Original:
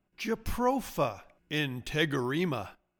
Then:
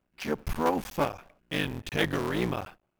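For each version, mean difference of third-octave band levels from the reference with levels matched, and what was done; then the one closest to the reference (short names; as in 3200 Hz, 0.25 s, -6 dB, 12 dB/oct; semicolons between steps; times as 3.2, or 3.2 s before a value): 4.5 dB: cycle switcher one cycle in 3, muted; in parallel at -8.5 dB: sample-rate reducer 13000 Hz, jitter 0%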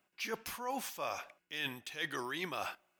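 7.5 dB: HPF 1300 Hz 6 dB/oct; reverse; compressor 10:1, threshold -46 dBFS, peak gain reduction 20.5 dB; reverse; gain +10.5 dB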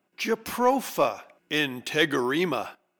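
3.0 dB: HPF 270 Hz 12 dB/oct; in parallel at -6 dB: soft clip -24.5 dBFS, distortion -12 dB; on the sum: gain +4 dB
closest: third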